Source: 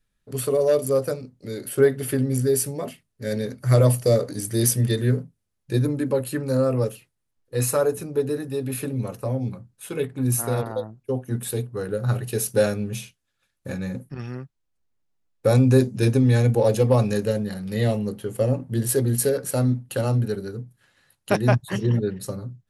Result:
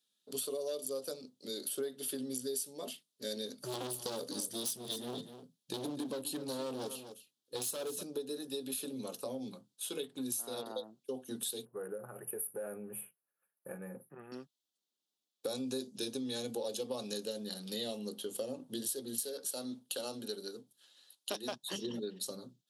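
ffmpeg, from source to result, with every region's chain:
-filter_complex "[0:a]asettb=1/sr,asplit=3[a][b][c];[a]atrim=end=3.584[d];[b]atrim=start=3.58:end=8.03,asetpts=PTS-STARTPTS,afade=t=in:d=0.004:c=qsin,afade=t=out:st=4.446:d=0.004:c=qsin,bass=f=250:g=7,treble=f=4k:g=0,volume=19.5dB,asoftclip=hard,volume=-19.5dB,aecho=1:1:251:0.2,atrim=end_sample=196245[e];[c]atrim=start=8.026[f];[d][e]acrossfade=d=0.004:c1=hsin:c2=qsin[g];[g][f]acrossfade=d=0.004:c1=qsin:c2=hsin,asettb=1/sr,asplit=3[h][i][j];[h]atrim=end=11.654[k];[i]atrim=start=11.65:end=14.32,asetpts=PTS-STARTPTS,afade=t=in:d=0.004:c=qsin,afade=t=out:st=2.666:d=0.004:c=qsin,equalizer=f=260:t=o:w=0.42:g=-14,acompressor=threshold=-26dB:ratio=5:attack=3.2:release=140:knee=1:detection=peak,asuperstop=centerf=4800:order=8:qfactor=0.6[l];[j]atrim=start=14.316[m];[k][l]acrossfade=d=0.004:c1=hsin:c2=qsin[n];[n][m]acrossfade=d=0.004:c1=qsin:c2=hsin,asettb=1/sr,asplit=3[o][p][q];[o]atrim=end=19.194[r];[p]atrim=start=19.19:end=21.66,asetpts=PTS-STARTPTS,afade=t=in:d=0.004:c=qsin,afade=t=out:st=2.466:d=0.004:c=qsin,lowshelf=f=190:g=-10.5,aeval=exprs='clip(val(0),-1,0.141)':c=same[s];[q]atrim=start=21.656[t];[r][s]acrossfade=d=0.004:c1=hsin:c2=qsin[u];[u][t]acrossfade=d=0.004:c1=qsin:c2=hsin,highpass=f=220:w=0.5412,highpass=f=220:w=1.3066,highshelf=f=2.7k:t=q:w=3:g=8.5,acompressor=threshold=-28dB:ratio=5,volume=-8dB"

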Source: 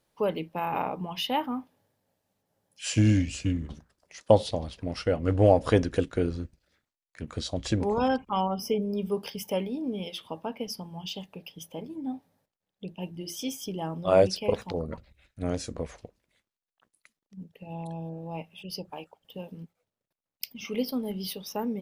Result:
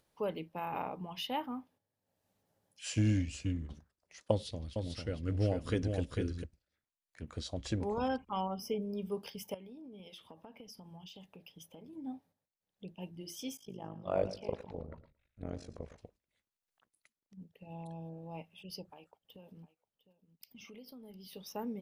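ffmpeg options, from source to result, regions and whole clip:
-filter_complex "[0:a]asettb=1/sr,asplit=3[a][b][c];[a]atrim=end=4.314[d];[b]atrim=start=4.31:end=6.44,asetpts=PTS-STARTPTS,afade=t=in:d=0.004:c=qsin,afade=t=out:st=2.126:d=0.004:c=qsin,equalizer=f=770:w=1.1:g=-12.5,aecho=1:1:448:0.562,atrim=end_sample=93933[e];[c]atrim=start=6.436[f];[d][e]acrossfade=d=0.004:c1=hsin:c2=qsin[g];[g][f]acrossfade=d=0.004:c1=qsin:c2=hsin,asettb=1/sr,asplit=3[h][i][j];[h]atrim=end=9.544[k];[i]atrim=start=9.54:end=11.93,asetpts=PTS-STARTPTS,afade=t=in:d=0.004:c=qsin,afade=t=out:st=2.386:d=0.004:c=qsin,bandreject=f=4.5k:w=23,acompressor=threshold=-39dB:ratio=8:attack=3.2:release=140:knee=1:detection=peak[l];[j]atrim=start=11.926[m];[k][l]acrossfade=d=0.004:c1=hsin:c2=qsin[n];[n][m]acrossfade=d=0.004:c1=qsin:c2=hsin,asettb=1/sr,asplit=3[o][p][q];[o]atrim=end=13.574[r];[p]atrim=start=13.57:end=15.98,asetpts=PTS-STARTPTS,afade=t=in:d=0.004:c=qsin,afade=t=out:st=2.406:d=0.004:c=qsin,lowpass=f=2.6k:p=1,tremolo=f=51:d=0.889,aecho=1:1:112|224:0.2|0.0439,atrim=end_sample=106281[s];[q]atrim=start=15.976[t];[r][s]acrossfade=d=0.004:c1=hsin:c2=qsin[u];[u][t]acrossfade=d=0.004:c1=qsin:c2=hsin,asettb=1/sr,asplit=3[v][w][x];[v]atrim=end=18.884[y];[w]atrim=start=18.88:end=21.33,asetpts=PTS-STARTPTS,afade=t=in:d=0.004:c=qsin,afade=t=out:st=2.446:d=0.004:c=qsin,acompressor=threshold=-41dB:ratio=6:attack=3.2:release=140:knee=1:detection=peak,aeval=exprs='0.0447*(abs(mod(val(0)/0.0447+3,4)-2)-1)':c=same,aecho=1:1:706:0.133,atrim=end_sample=108045[z];[x]atrim=start=21.326[aa];[y][z]acrossfade=d=0.004:c1=hsin:c2=qsin[ab];[ab][aa]acrossfade=d=0.004:c1=qsin:c2=hsin,acompressor=mode=upward:threshold=-48dB:ratio=2.5,agate=range=-8dB:threshold=-55dB:ratio=16:detection=peak,equalizer=f=76:w=2.7:g=4.5,volume=-8.5dB"

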